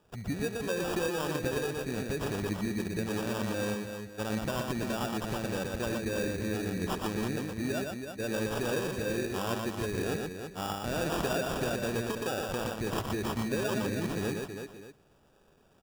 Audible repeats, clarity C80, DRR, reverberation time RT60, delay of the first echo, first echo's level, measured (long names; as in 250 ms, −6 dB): 5, no reverb audible, no reverb audible, no reverb audible, 69 ms, −18.5 dB